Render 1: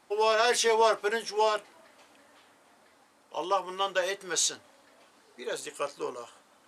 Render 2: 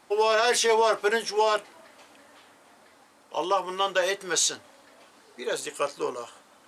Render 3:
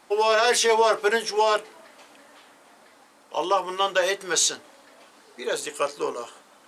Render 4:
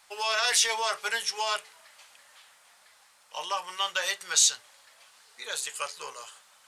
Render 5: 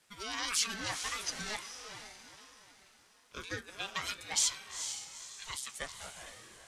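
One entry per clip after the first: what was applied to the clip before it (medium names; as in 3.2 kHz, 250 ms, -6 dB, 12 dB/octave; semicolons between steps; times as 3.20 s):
peak limiter -18 dBFS, peak gain reduction 5.5 dB; trim +5 dB
peaking EQ 95 Hz -9.5 dB 0.72 oct; de-hum 62.35 Hz, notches 7; trim +2.5 dB
amplifier tone stack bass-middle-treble 10-0-10; trim +1.5 dB
harmonic-percussive split harmonic -6 dB; echo that smears into a reverb 451 ms, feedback 41%, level -8 dB; ring modulator with a swept carrier 530 Hz, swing 30%, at 1.4 Hz; trim -4 dB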